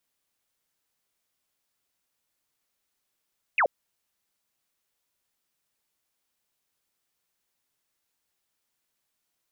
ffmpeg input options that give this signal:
ffmpeg -f lavfi -i "aevalsrc='0.119*clip(t/0.002,0,1)*clip((0.08-t)/0.002,0,1)*sin(2*PI*2800*0.08/log(480/2800)*(exp(log(480/2800)*t/0.08)-1))':duration=0.08:sample_rate=44100" out.wav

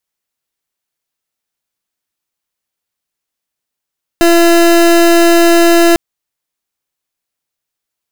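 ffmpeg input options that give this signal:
ffmpeg -f lavfi -i "aevalsrc='0.447*(2*lt(mod(339*t,1),0.3)-1)':duration=1.75:sample_rate=44100" out.wav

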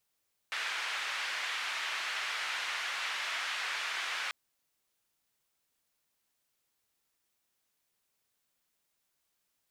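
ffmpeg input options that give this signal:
ffmpeg -f lavfi -i "anoisesrc=color=white:duration=3.79:sample_rate=44100:seed=1,highpass=frequency=1500,lowpass=frequency=2200,volume=-17.6dB" out.wav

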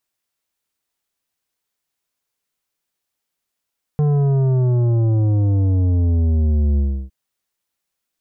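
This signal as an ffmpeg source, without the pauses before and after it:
ffmpeg -f lavfi -i "aevalsrc='0.188*clip((3.11-t)/0.32,0,1)*tanh(3.16*sin(2*PI*150*3.11/log(65/150)*(exp(log(65/150)*t/3.11)-1)))/tanh(3.16)':duration=3.11:sample_rate=44100" out.wav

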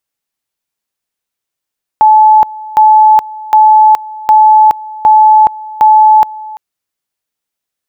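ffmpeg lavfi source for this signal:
ffmpeg -f lavfi -i "aevalsrc='pow(10,(-1.5-20.5*gte(mod(t,0.76),0.42))/20)*sin(2*PI*863*t)':duration=4.56:sample_rate=44100" out.wav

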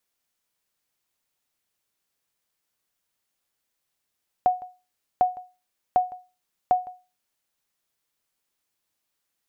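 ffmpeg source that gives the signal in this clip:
ffmpeg -f lavfi -i "aevalsrc='0.266*(sin(2*PI*731*mod(t,0.75))*exp(-6.91*mod(t,0.75)/0.3)+0.0841*sin(2*PI*731*max(mod(t,0.75)-0.16,0))*exp(-6.91*max(mod(t,0.75)-0.16,0)/0.3))':duration=3:sample_rate=44100" out.wav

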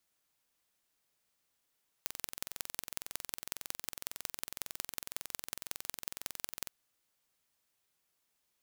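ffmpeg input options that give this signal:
ffmpeg -f lavfi -i "aevalsrc='0.422*eq(mod(n,2014),0)*(0.5+0.5*eq(mod(n,8056),0))':duration=4.62:sample_rate=44100" out.wav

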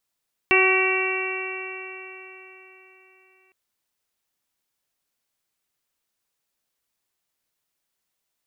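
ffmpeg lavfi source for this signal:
ffmpeg -f lavfi -i "aevalsrc='0.106*pow(10,-3*t/3.96)*sin(2*PI*375.28*t)+0.0473*pow(10,-3*t/3.96)*sin(2*PI*752.25*t)+0.0562*pow(10,-3*t/3.96)*sin(2*PI*1132.57*t)+0.0316*pow(10,-3*t/3.96)*sin(2*PI*1517.89*t)+0.0631*pow(10,-3*t/3.96)*sin(2*PI*1909.83*t)+0.119*pow(10,-3*t/3.96)*sin(2*PI*2309.95*t)+0.119*pow(10,-3*t/3.96)*sin(2*PI*2719.76*t)':duration=3.01:sample_rate=44100" out.wav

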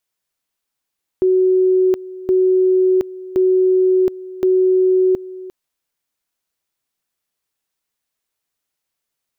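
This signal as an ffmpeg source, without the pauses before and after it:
ffmpeg -f lavfi -i "aevalsrc='pow(10,(-10.5-18*gte(mod(t,1.07),0.72))/20)*sin(2*PI*372*t)':duration=4.28:sample_rate=44100" out.wav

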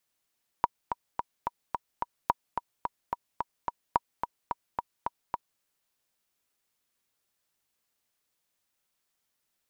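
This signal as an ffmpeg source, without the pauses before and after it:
ffmpeg -f lavfi -i "aevalsrc='pow(10,(-9-7*gte(mod(t,6*60/217),60/217))/20)*sin(2*PI*957*mod(t,60/217))*exp(-6.91*mod(t,60/217)/0.03)':duration=4.97:sample_rate=44100" out.wav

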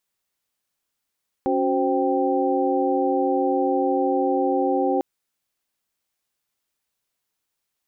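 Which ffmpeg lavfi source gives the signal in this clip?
ffmpeg -f lavfi -i "aevalsrc='0.0631*(sin(2*PI*277.18*t)+sin(2*PI*369.99*t)+sin(2*PI*523.25*t)+sin(2*PI*783.99*t))':duration=3.55:sample_rate=44100" out.wav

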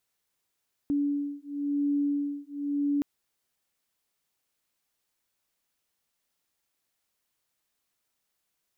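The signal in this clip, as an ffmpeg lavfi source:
ffmpeg -f lavfi -i "aevalsrc='0.0355*(sin(2*PI*286*t)+sin(2*PI*286.96*t))':duration=2.12:sample_rate=44100" out.wav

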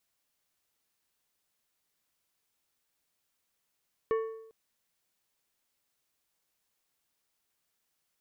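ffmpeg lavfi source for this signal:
ffmpeg -f lavfi -i "aevalsrc='0.0668*pow(10,-3*t/0.8)*sin(2*PI*446*t)+0.0237*pow(10,-3*t/0.608)*sin(2*PI*1115*t)+0.00841*pow(10,-3*t/0.528)*sin(2*PI*1784*t)+0.00299*pow(10,-3*t/0.494)*sin(2*PI*2230*t)+0.00106*pow(10,-3*t/0.456)*sin(2*PI*2899*t)':duration=0.4:sample_rate=44100" out.wav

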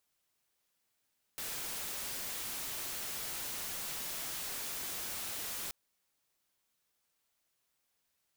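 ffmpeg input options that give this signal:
ffmpeg -f lavfi -i "anoisesrc=color=white:amplitude=0.0173:duration=4.33:sample_rate=44100:seed=1" out.wav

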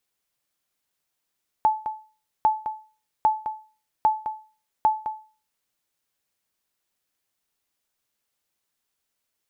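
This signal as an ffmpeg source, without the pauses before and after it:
ffmpeg -f lavfi -i "aevalsrc='0.266*(sin(2*PI*867*mod(t,0.8))*exp(-6.91*mod(t,0.8)/0.37)+0.299*sin(2*PI*867*max(mod(t,0.8)-0.21,0))*exp(-6.91*max(mod(t,0.8)-0.21,0)/0.37))':duration=4:sample_rate=44100" out.wav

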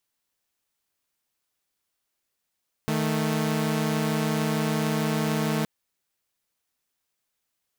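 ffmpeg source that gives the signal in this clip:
ffmpeg -f lavfi -i "aevalsrc='0.0668*((2*mod(155.56*t,1)-1)+(2*mod(220*t,1)-1))':duration=2.77:sample_rate=44100" out.wav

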